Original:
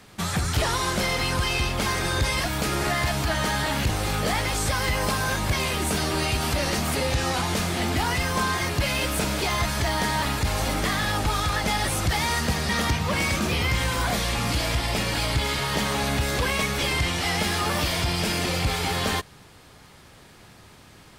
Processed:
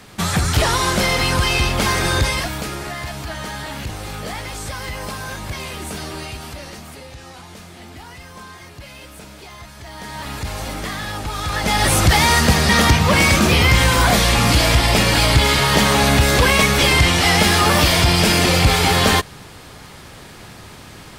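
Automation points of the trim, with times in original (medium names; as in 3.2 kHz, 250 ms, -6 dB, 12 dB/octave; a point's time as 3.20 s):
2.16 s +7 dB
2.85 s -4 dB
6.07 s -4 dB
7.11 s -13.5 dB
9.78 s -13.5 dB
10.37 s -2 dB
11.31 s -2 dB
11.91 s +10.5 dB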